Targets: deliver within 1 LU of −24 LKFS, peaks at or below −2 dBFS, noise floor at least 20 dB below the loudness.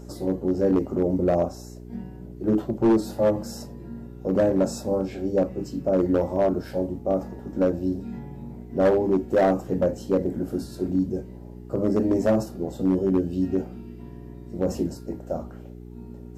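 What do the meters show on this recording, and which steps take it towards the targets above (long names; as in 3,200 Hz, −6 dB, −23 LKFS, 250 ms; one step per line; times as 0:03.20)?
share of clipped samples 1.1%; peaks flattened at −14.0 dBFS; mains hum 60 Hz; hum harmonics up to 420 Hz; level of the hum −39 dBFS; integrated loudness −25.0 LKFS; sample peak −14.0 dBFS; target loudness −24.0 LKFS
→ clipped peaks rebuilt −14 dBFS
hum removal 60 Hz, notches 7
level +1 dB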